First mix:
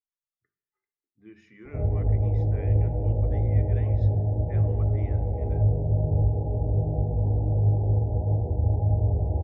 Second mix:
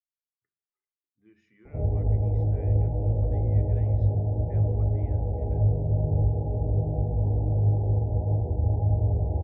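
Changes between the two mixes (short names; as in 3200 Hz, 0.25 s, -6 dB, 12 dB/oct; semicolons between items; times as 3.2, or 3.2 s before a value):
speech -10.0 dB; background: send -6.0 dB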